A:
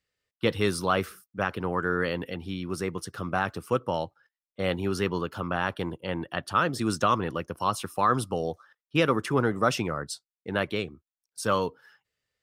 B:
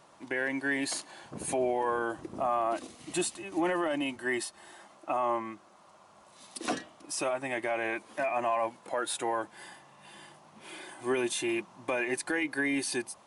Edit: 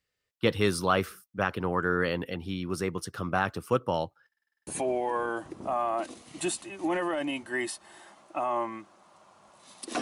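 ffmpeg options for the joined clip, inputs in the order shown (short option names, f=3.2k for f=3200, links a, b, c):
-filter_complex "[0:a]apad=whole_dur=10.01,atrim=end=10.01,asplit=8[a][b][c][d][e][f][g][h];[a]atrim=end=4.322[i];[b]atrim=start=4.268:end=4.322[j];[c]atrim=start=4.268:end=4.322[k];[d]atrim=start=4.268:end=4.322[l];[e]atrim=start=4.268:end=4.322[m];[f]atrim=start=4.268:end=4.322[n];[g]atrim=start=4.268:end=4.322[o];[h]atrim=start=4.268:end=4.322[p];[1:a]atrim=start=1.398:end=6.74[q];[i][j]acrossfade=d=0.004:c1=hsin:c2=hsin[r];[r][k]acrossfade=d=0.004:c1=hsin:c2=hsin[s];[s][l]acrossfade=d=0.004:c1=hsin:c2=hsin[t];[t][m]acrossfade=d=0.004:c1=hsin:c2=hsin[u];[u][n]acrossfade=d=0.004:c1=hsin:c2=hsin[v];[v][o]acrossfade=d=0.004:c1=hsin:c2=hsin[w];[w][p]acrossfade=d=0.004:c1=hsin:c2=hsin[x];[x][q]acrossfade=d=0.004:c1=hsin:c2=hsin"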